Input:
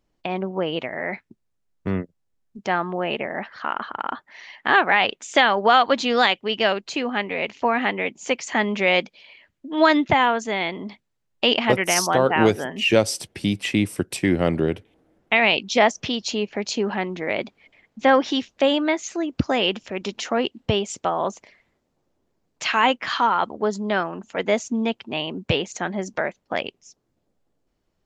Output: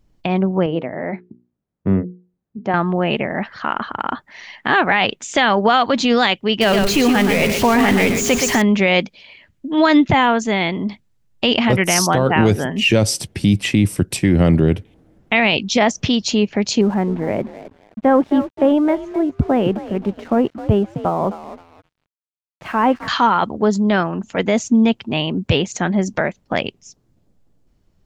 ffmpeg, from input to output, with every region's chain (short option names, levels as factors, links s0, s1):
-filter_complex "[0:a]asettb=1/sr,asplit=3[s0][s1][s2];[s0]atrim=end=0.664[s3];[s1]atrim=start=0.66:end=2.74,asetpts=PTS-STARTPTS,afade=t=in:d=0.004:c=qsin,afade=t=out:st=2.076:d=0.004:c=qsin,bandpass=f=400:t=q:w=0.53,bandreject=f=60:t=h:w=6,bandreject=f=120:t=h:w=6,bandreject=f=180:t=h:w=6,bandreject=f=240:t=h:w=6,bandreject=f=300:t=h:w=6,bandreject=f=360:t=h:w=6,bandreject=f=420:t=h:w=6,bandreject=f=480:t=h:w=6[s4];[s2]atrim=start=2.736[s5];[s3][s4]acrossfade=d=0.004:c1=hsin:c2=qsin[s6];[s6][s5]acrossfade=d=0.004:c1=qsin:c2=hsin,asettb=1/sr,asplit=3[s7][s8][s9];[s7]atrim=end=6.614[s10];[s8]atrim=start=6.61:end=8.62,asetpts=PTS-STARTPTS,afade=t=in:d=0.004:c=qsin,afade=t=out:st=2.006:d=0.004:c=qsin,aeval=exprs='val(0)+0.5*0.0562*sgn(val(0))':c=same,aecho=1:1:121:0.447,atrim=end_sample=88641,aeval=exprs='val(0)+0.0251*sin(2*PI*410*n/s)':c=same[s11];[s9]atrim=start=8.616[s12];[s10][s11]acrossfade=d=0.004:c1=hsin:c2=qsin[s13];[s13][s12]acrossfade=d=0.004:c1=qsin:c2=hsin,asettb=1/sr,asplit=3[s14][s15][s16];[s14]atrim=end=16.814[s17];[s15]atrim=start=16.81:end=23.08,asetpts=PTS-STARTPTS,afade=t=in:d=0.004:c=qsin,afade=t=out:st=6.266:d=0.004:c=qsin,lowpass=1100,asplit=4[s18][s19][s20][s21];[s19]adelay=262,afreqshift=47,volume=0.211[s22];[s20]adelay=524,afreqshift=94,volume=0.0653[s23];[s21]adelay=786,afreqshift=141,volume=0.0204[s24];[s18][s22][s23][s24]amix=inputs=4:normalize=0,atrim=end_sample=276507,aeval=exprs='sgn(val(0))*max(abs(val(0))-0.00335,0)':c=same[s25];[s16]atrim=start=23.076[s26];[s17][s25]acrossfade=d=0.004:c1=hsin:c2=qsin[s27];[s27][s26]acrossfade=d=0.004:c1=qsin:c2=hsin,bass=f=250:g=11,treble=f=4000:g=2,alimiter=limit=0.335:level=0:latency=1:release=16,volume=1.68"